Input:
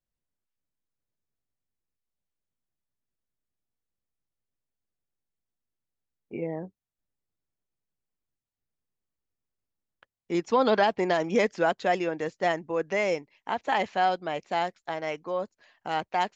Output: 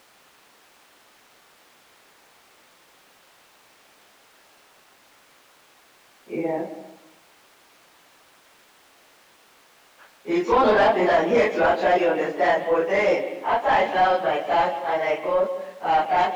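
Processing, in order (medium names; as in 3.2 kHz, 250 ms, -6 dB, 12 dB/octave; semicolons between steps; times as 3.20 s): phase randomisation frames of 100 ms; bass shelf 220 Hz -6.5 dB; in parallel at -7 dB: word length cut 8-bit, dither triangular; on the sum: overdrive pedal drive 18 dB, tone 1 kHz, clips at -7 dBFS; on a send at -9.5 dB: cabinet simulation 160–3900 Hz, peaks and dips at 290 Hz +7 dB, 990 Hz -4 dB, 1.5 kHz -8 dB + reverberation RT60 1.0 s, pre-delay 126 ms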